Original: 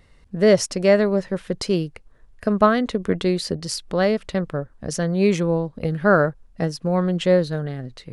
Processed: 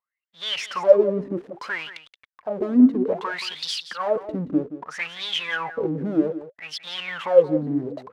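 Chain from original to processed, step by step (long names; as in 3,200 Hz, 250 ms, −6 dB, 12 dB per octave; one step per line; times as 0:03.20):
0:02.87–0:04.16: high-pass filter 130 Hz 24 dB per octave
leveller curve on the samples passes 5
in parallel at −6.5 dB: fuzz pedal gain 40 dB, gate −41 dBFS
on the sum: volume swells 162 ms
leveller curve on the samples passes 2
LFO wah 0.62 Hz 260–3,600 Hz, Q 16
on a send: single-tap delay 175 ms −13.5 dB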